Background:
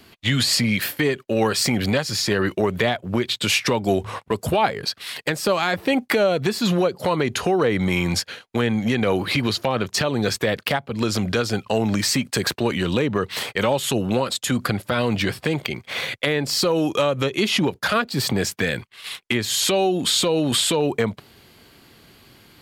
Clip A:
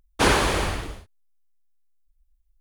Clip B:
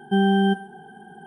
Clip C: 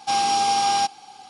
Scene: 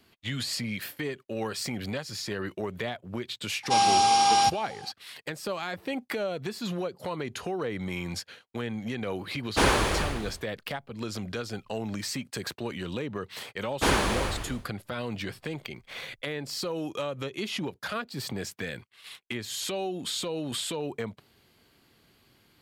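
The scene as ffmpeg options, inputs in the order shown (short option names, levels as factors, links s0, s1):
-filter_complex "[1:a]asplit=2[s0][s1];[0:a]volume=0.237[s2];[3:a]atrim=end=1.29,asetpts=PTS-STARTPTS,volume=0.944,afade=t=in:d=0.004:c=hsin,afade=t=out:st=1.286:d=0.004:c=hsin,adelay=3630[s3];[s0]atrim=end=2.6,asetpts=PTS-STARTPTS,volume=0.668,afade=t=in:d=0.004:c=hsin,afade=t=out:st=2.596:d=0.004:c=hsin,adelay=9370[s4];[s1]atrim=end=2.6,asetpts=PTS-STARTPTS,volume=0.562,afade=t=in:d=0.004:c=hsin,afade=t=out:st=2.596:d=0.004:c=hsin,adelay=13620[s5];[s2][s3][s4][s5]amix=inputs=4:normalize=0"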